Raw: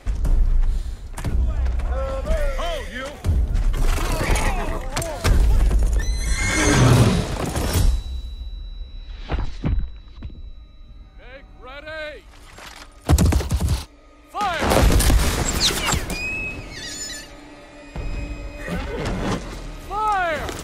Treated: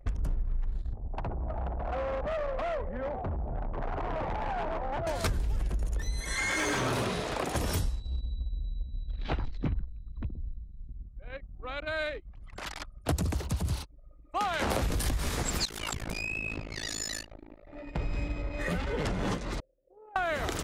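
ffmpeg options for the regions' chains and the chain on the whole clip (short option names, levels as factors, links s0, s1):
-filter_complex "[0:a]asettb=1/sr,asplit=3[s0][s1][s2];[s0]atrim=end=0.934[s3];[s1]atrim=start=0.93:end=5.07,asetpts=PTS-STARTPTS,afade=t=in:d=0.004:c=qsin,afade=t=out:st=4.136:d=0.004:c=qsin,acrossover=split=130|500[s4][s5][s6];[s4]acompressor=threshold=0.0282:ratio=4[s7];[s5]acompressor=threshold=0.00891:ratio=4[s8];[s6]acompressor=threshold=0.0282:ratio=4[s9];[s7][s8][s9]amix=inputs=3:normalize=0,lowpass=f=800:t=q:w=2.6,asoftclip=type=hard:threshold=0.0335[s10];[s2]atrim=start=5.066[s11];[s3][s10]acrossfade=d=0.004:c1=hsin:c2=qsin[s12];[s12][s11]acrossfade=d=0.004:c1=qsin:c2=hsin,asettb=1/sr,asplit=3[s13][s14][s15];[s13]atrim=end=6.204[s16];[s14]atrim=start=6.2:end=7.55,asetpts=PTS-STARTPTS,afade=t=in:d=0.004:c=qsin,afade=t=out:st=1.346:d=0.004:c=qsin,bass=f=250:g=-13,treble=f=4000:g=-5,volume=6.68,asoftclip=hard,volume=0.15[s17];[s15]atrim=start=7.546[s18];[s16][s17]acrossfade=d=0.004:c1=hsin:c2=qsin[s19];[s19][s18]acrossfade=d=0.004:c1=qsin:c2=hsin,asettb=1/sr,asplit=3[s20][s21][s22];[s20]atrim=end=15.654[s23];[s21]atrim=start=15.65:end=17.67,asetpts=PTS-STARTPTS,afade=t=in:d=0.004:c=qsin,afade=t=out:st=2.016:d=0.004:c=qsin,acompressor=threshold=0.0501:ratio=6:attack=3.2:release=140:knee=1:detection=peak,tremolo=f=54:d=0.857[s24];[s22]atrim=start=17.666[s25];[s23][s24]acrossfade=d=0.004:c1=hsin:c2=qsin[s26];[s26][s25]acrossfade=d=0.004:c1=qsin:c2=hsin,asettb=1/sr,asplit=3[s27][s28][s29];[s27]atrim=end=19.604[s30];[s28]atrim=start=19.6:end=20.16,asetpts=PTS-STARTPTS,afade=t=in:d=0.004:c=qsin,afade=t=out:st=0.556:d=0.004:c=qsin,equalizer=f=3500:w=0.35:g=-13.5,asoftclip=type=hard:threshold=0.1,asplit=3[s31][s32][s33];[s31]bandpass=f=530:t=q:w=8,volume=1[s34];[s32]bandpass=f=1840:t=q:w=8,volume=0.501[s35];[s33]bandpass=f=2480:t=q:w=8,volume=0.355[s36];[s34][s35][s36]amix=inputs=3:normalize=0[s37];[s29]atrim=start=20.156[s38];[s30][s37]acrossfade=d=0.004:c1=hsin:c2=qsin[s39];[s39][s38]acrossfade=d=0.004:c1=qsin:c2=hsin,anlmdn=0.631,acompressor=threshold=0.0398:ratio=5"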